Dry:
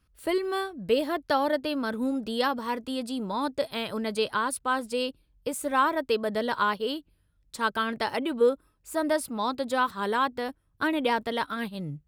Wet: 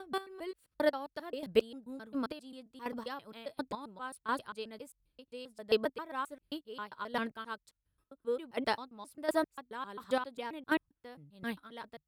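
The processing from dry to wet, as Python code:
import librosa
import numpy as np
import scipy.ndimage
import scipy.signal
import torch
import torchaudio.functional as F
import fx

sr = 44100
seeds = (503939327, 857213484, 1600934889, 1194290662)

y = fx.block_reorder(x, sr, ms=133.0, group=6)
y = fx.chopper(y, sr, hz=1.4, depth_pct=65, duty_pct=25)
y = fx.upward_expand(y, sr, threshold_db=-44.0, expansion=1.5)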